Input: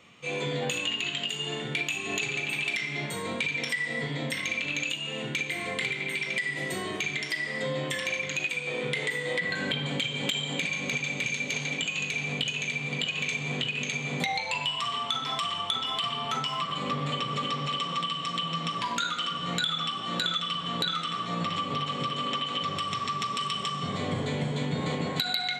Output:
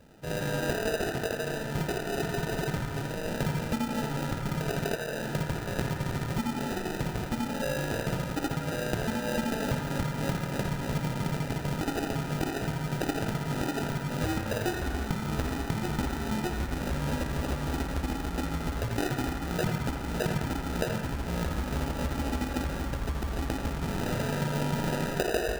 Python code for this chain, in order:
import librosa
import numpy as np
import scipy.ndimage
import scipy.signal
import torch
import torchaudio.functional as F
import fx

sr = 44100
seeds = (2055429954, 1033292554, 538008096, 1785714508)

p1 = fx.sample_hold(x, sr, seeds[0], rate_hz=1100.0, jitter_pct=0)
y = p1 + fx.echo_banded(p1, sr, ms=84, feedback_pct=74, hz=1300.0, wet_db=-4.5, dry=0)